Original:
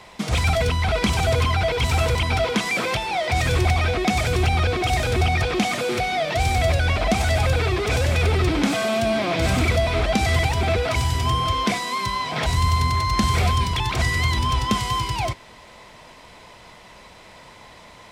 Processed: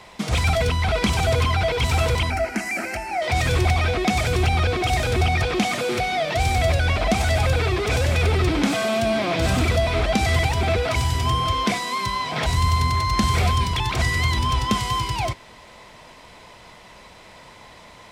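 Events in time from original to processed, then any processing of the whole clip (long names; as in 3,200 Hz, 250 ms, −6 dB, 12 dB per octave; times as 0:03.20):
0:02.30–0:03.22: phaser with its sweep stopped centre 710 Hz, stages 8
0:09.38–0:09.82: notch filter 2,200 Hz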